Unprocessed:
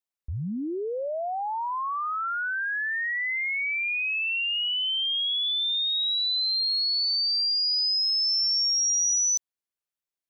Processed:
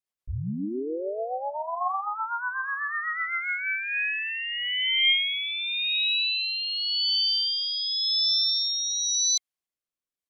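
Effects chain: small resonant body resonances 1.1/3.2 kHz, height 7 dB, ringing for 35 ms; harmony voices -7 st -4 dB, -5 st -16 dB; rotary cabinet horn 8 Hz, later 0.9 Hz, at 3.20 s

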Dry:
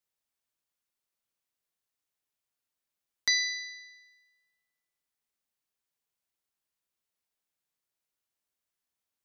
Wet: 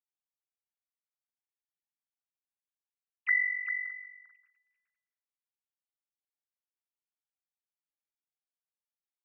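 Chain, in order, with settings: formants replaced by sine waves; echo from a far wall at 68 m, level -7 dB

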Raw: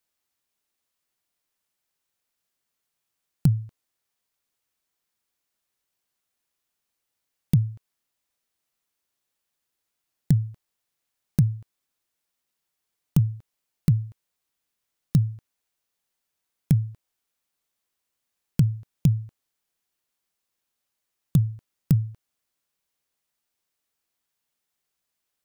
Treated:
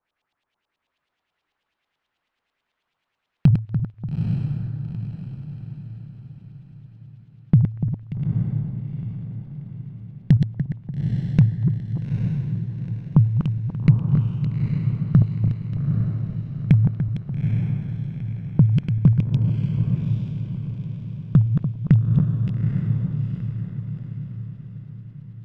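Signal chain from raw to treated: backward echo that repeats 146 ms, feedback 67%, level -6 dB; LFO low-pass saw up 9.2 Hz 790–3700 Hz; echo that smears into a reverb 860 ms, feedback 44%, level -4.5 dB; trim +4.5 dB

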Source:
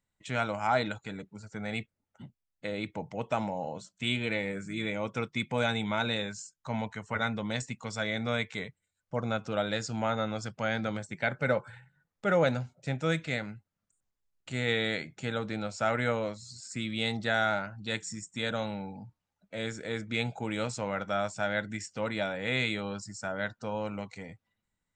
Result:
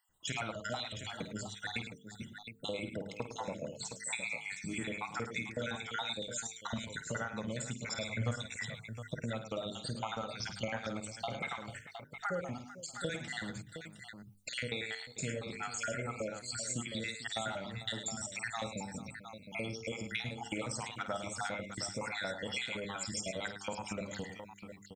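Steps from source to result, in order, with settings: random holes in the spectrogram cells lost 66%; treble shelf 6.2 kHz +12 dB; hum notches 50/100/150/200/250/300/350/400/450 Hz; compression 6:1, threshold -44 dBFS, peak gain reduction 20 dB; 8.04–8.46 s: peaking EQ 110 Hz +15 dB 0.33 oct; multi-tap echo 51/107/446/714 ms -10/-10/-15.5/-9.5 dB; trim +7.5 dB

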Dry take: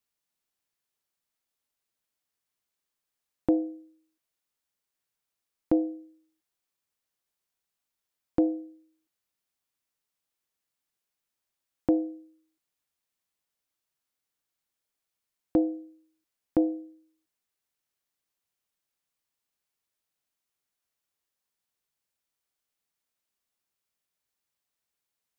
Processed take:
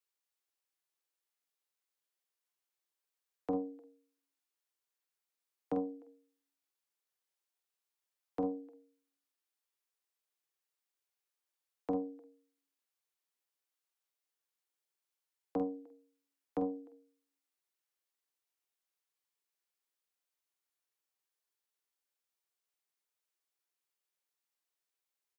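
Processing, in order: steep high-pass 350 Hz 48 dB/octave; band-stop 680 Hz, Q 12; frequency shift -38 Hz; doubling 47 ms -8 dB; echo from a far wall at 52 m, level -24 dB; loudspeaker Doppler distortion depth 0.33 ms; trim -5.5 dB

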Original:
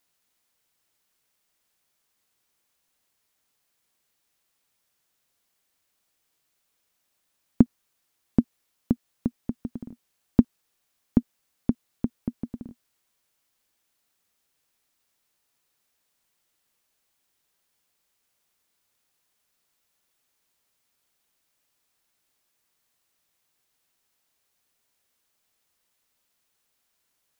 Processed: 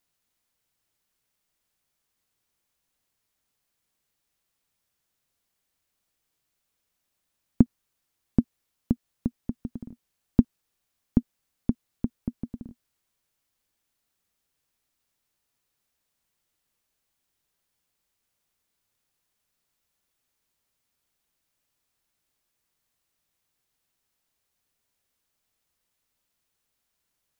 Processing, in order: bass shelf 180 Hz +8 dB; trim -4.5 dB

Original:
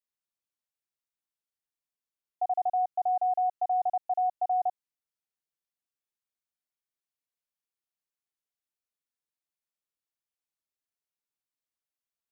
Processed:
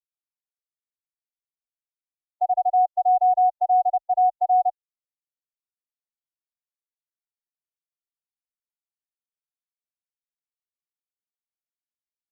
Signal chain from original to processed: tilt EQ -4.5 dB/octave; spectral contrast expander 1.5:1; trim +7 dB

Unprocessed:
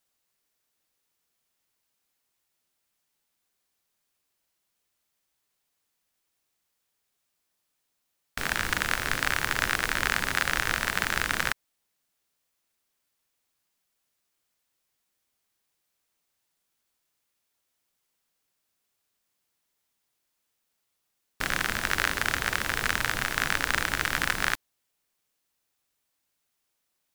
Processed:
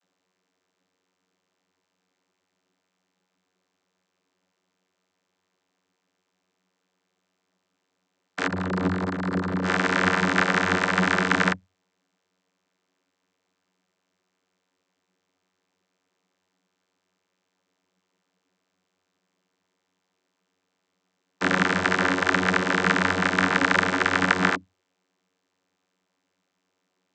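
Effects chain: 8.46–9.65 s: Schmitt trigger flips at -25 dBFS; vocoder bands 32, saw 92.2 Hz; endings held to a fixed fall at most 440 dB/s; trim +7.5 dB

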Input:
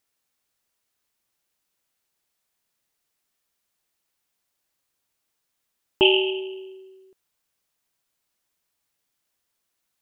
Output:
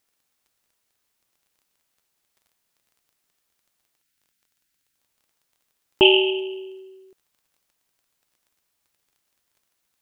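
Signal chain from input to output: time-frequency box 4.01–4.97 s, 330–1300 Hz -11 dB; crackle 20 per s -53 dBFS; trim +3 dB

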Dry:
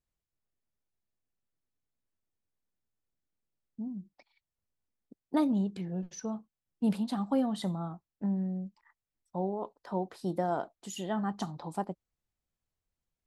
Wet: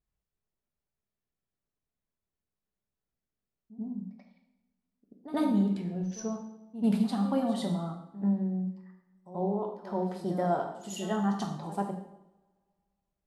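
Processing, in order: reverse echo 86 ms -14.5 dB; two-slope reverb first 0.83 s, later 2.3 s, from -25 dB, DRR 2 dB; tape noise reduction on one side only decoder only

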